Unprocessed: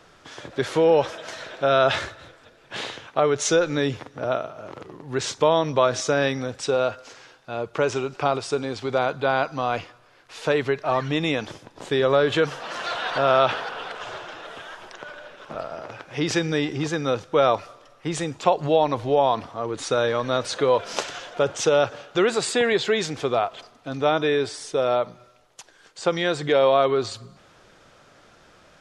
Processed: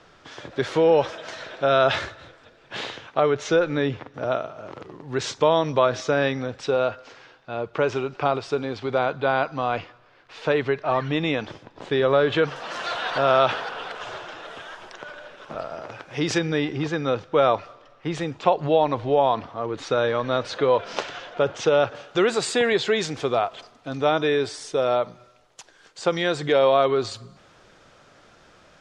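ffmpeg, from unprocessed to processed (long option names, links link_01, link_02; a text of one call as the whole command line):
ffmpeg -i in.wav -af "asetnsamples=nb_out_samples=441:pad=0,asendcmd='3.31 lowpass f 3200;4.14 lowpass f 6400;5.79 lowpass f 4000;12.56 lowpass f 9000;16.38 lowpass f 4000;21.95 lowpass f 9100',lowpass=6100" out.wav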